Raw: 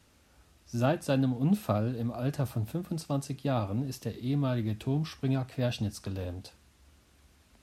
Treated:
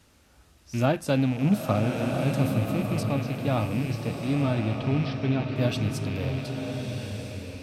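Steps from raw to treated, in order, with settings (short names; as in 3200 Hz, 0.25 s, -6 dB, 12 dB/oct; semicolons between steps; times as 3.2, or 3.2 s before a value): rattling part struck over -38 dBFS, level -34 dBFS; 3.03–5.56 LPF 4600 Hz 24 dB/oct; bloom reverb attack 1.3 s, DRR 3 dB; gain +3.5 dB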